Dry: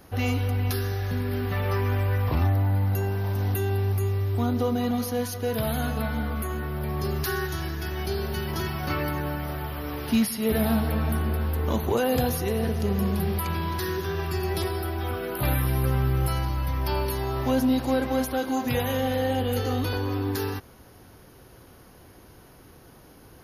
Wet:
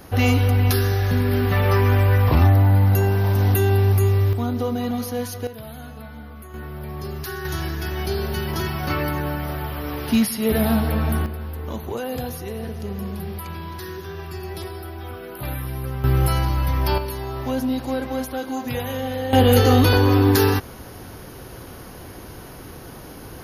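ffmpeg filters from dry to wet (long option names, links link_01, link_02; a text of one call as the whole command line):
ffmpeg -i in.wav -af "asetnsamples=nb_out_samples=441:pad=0,asendcmd='4.33 volume volume 1dB;5.47 volume volume -10dB;6.54 volume volume -3dB;7.45 volume volume 4dB;11.26 volume volume -4.5dB;16.04 volume volume 6dB;16.98 volume volume -1dB;19.33 volume volume 12dB',volume=8dB" out.wav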